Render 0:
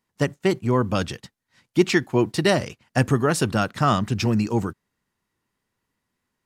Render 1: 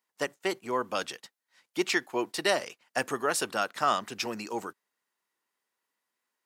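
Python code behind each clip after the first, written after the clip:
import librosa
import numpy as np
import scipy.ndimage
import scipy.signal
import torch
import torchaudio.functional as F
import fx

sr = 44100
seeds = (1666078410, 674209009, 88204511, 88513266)

y = scipy.signal.sosfilt(scipy.signal.butter(2, 500.0, 'highpass', fs=sr, output='sos'), x)
y = fx.high_shelf(y, sr, hz=11000.0, db=5.5)
y = y * 10.0 ** (-4.0 / 20.0)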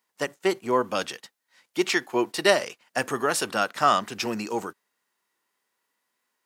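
y = fx.hpss(x, sr, part='percussive', gain_db=-6)
y = y * 10.0 ** (8.5 / 20.0)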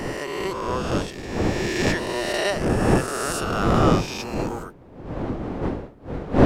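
y = fx.spec_swells(x, sr, rise_s=2.41)
y = fx.dmg_wind(y, sr, seeds[0], corner_hz=400.0, level_db=-17.0)
y = y * 10.0 ** (-7.5 / 20.0)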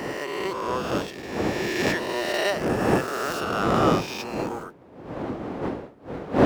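y = scipy.ndimage.median_filter(x, 5, mode='constant')
y = fx.highpass(y, sr, hz=240.0, slope=6)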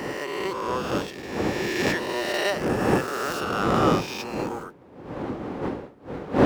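y = fx.notch(x, sr, hz=660.0, q=12.0)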